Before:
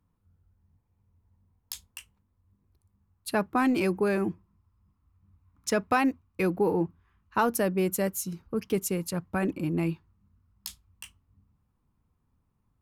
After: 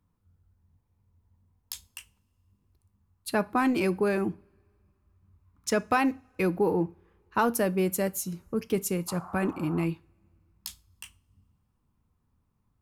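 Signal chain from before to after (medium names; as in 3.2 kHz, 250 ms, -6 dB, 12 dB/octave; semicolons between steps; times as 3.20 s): 9.07–9.84 s: band noise 680–1300 Hz -45 dBFS; two-slope reverb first 0.33 s, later 2.5 s, from -28 dB, DRR 16 dB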